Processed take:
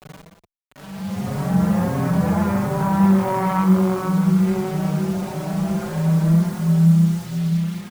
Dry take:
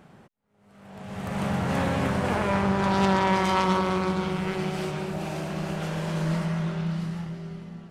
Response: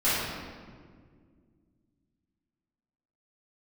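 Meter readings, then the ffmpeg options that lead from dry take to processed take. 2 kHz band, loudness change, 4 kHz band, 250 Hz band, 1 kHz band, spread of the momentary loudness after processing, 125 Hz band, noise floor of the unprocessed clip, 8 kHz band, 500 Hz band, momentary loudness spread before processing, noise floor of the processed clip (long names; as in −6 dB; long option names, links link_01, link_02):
−2.5 dB, +7.0 dB, −4.0 dB, +10.0 dB, +1.0 dB, 9 LU, +10.5 dB, −57 dBFS, +4.5 dB, +2.0 dB, 13 LU, −54 dBFS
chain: -filter_complex "[0:a]lowpass=1500,equalizer=frequency=170:width_type=o:width=0.59:gain=11,bandreject=frequency=78.85:width_type=h:width=4,bandreject=frequency=157.7:width_type=h:width=4,bandreject=frequency=236.55:width_type=h:width=4,bandreject=frequency=315.4:width_type=h:width=4,bandreject=frequency=394.25:width_type=h:width=4,bandreject=frequency=473.1:width_type=h:width=4,bandreject=frequency=551.95:width_type=h:width=4,bandreject=frequency=630.8:width_type=h:width=4,asplit=2[link_01][link_02];[link_02]alimiter=limit=-18.5dB:level=0:latency=1:release=187,volume=1.5dB[link_03];[link_01][link_03]amix=inputs=2:normalize=0,acrusher=bits=5:mix=0:aa=0.000001,aecho=1:1:176:0.355,asplit=2[link_04][link_05];[link_05]adelay=5,afreqshift=1.5[link_06];[link_04][link_06]amix=inputs=2:normalize=1"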